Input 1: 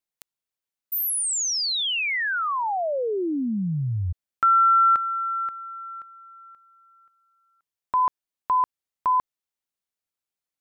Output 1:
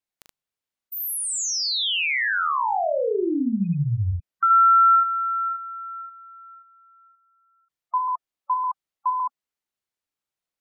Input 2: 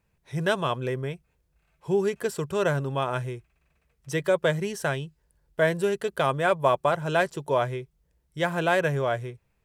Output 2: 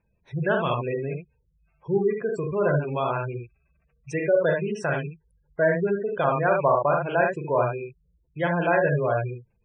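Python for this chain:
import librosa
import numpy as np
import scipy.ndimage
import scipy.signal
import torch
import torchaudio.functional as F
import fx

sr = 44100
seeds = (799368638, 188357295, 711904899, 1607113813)

y = fx.rattle_buzz(x, sr, strikes_db=-37.0, level_db=-31.0)
y = fx.high_shelf(y, sr, hz=6600.0, db=-6.5)
y = fx.room_early_taps(y, sr, ms=(41, 75), db=(-4.5, -4.0))
y = fx.spec_gate(y, sr, threshold_db=-20, keep='strong')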